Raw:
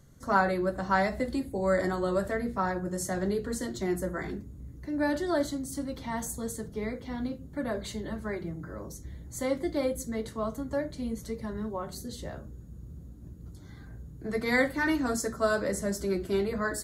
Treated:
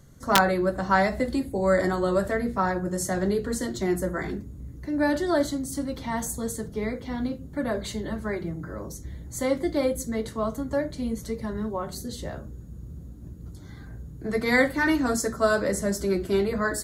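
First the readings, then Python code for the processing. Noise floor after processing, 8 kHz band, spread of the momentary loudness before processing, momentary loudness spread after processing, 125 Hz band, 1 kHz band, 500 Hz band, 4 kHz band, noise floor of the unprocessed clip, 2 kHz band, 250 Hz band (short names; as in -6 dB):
-42 dBFS, +5.0 dB, 17 LU, 17 LU, +4.5 dB, +4.0 dB, +4.5 dB, +6.5 dB, -47 dBFS, +4.5 dB, +4.5 dB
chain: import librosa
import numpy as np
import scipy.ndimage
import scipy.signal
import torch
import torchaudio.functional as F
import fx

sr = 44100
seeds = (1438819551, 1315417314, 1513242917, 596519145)

y = (np.mod(10.0 ** (12.5 / 20.0) * x + 1.0, 2.0) - 1.0) / 10.0 ** (12.5 / 20.0)
y = y * librosa.db_to_amplitude(4.5)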